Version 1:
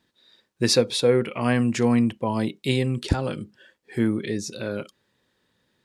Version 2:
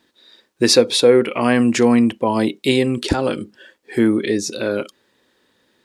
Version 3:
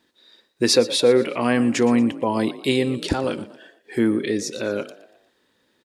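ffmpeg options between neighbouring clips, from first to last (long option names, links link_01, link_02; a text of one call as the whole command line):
ffmpeg -i in.wav -filter_complex "[0:a]lowshelf=frequency=210:width_type=q:width=1.5:gain=-7,asplit=2[link_01][link_02];[link_02]alimiter=limit=-15.5dB:level=0:latency=1:release=143,volume=-2.5dB[link_03];[link_01][link_03]amix=inputs=2:normalize=0,volume=3.5dB" out.wav
ffmpeg -i in.wav -filter_complex "[0:a]asplit=5[link_01][link_02][link_03][link_04][link_05];[link_02]adelay=118,afreqshift=41,volume=-17dB[link_06];[link_03]adelay=236,afreqshift=82,volume=-24.1dB[link_07];[link_04]adelay=354,afreqshift=123,volume=-31.3dB[link_08];[link_05]adelay=472,afreqshift=164,volume=-38.4dB[link_09];[link_01][link_06][link_07][link_08][link_09]amix=inputs=5:normalize=0,volume=-4dB" out.wav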